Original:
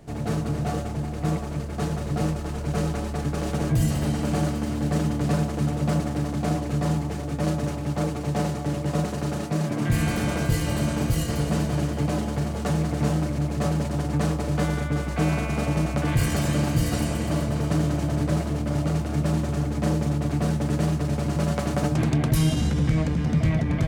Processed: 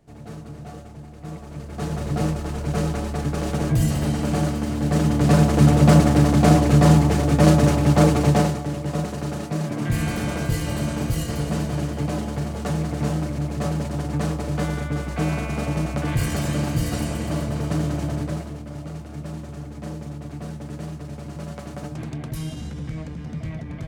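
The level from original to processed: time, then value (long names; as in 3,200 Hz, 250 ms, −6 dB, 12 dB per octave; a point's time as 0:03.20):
0:01.24 −11 dB
0:02.02 +2 dB
0:04.78 +2 dB
0:05.65 +10.5 dB
0:08.26 +10.5 dB
0:08.67 −0.5 dB
0:18.09 −0.5 dB
0:18.67 −9.5 dB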